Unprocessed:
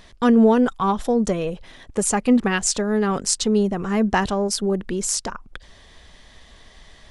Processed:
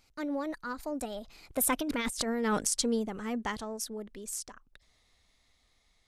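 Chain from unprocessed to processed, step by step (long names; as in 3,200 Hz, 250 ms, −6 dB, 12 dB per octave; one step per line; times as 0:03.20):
source passing by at 0:02.54, 24 m/s, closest 3.5 metres
high-shelf EQ 6,400 Hz +3 dB
change of speed 1.17×
high-shelf EQ 2,400 Hz +5 dB
compressor whose output falls as the input rises −30 dBFS, ratio −1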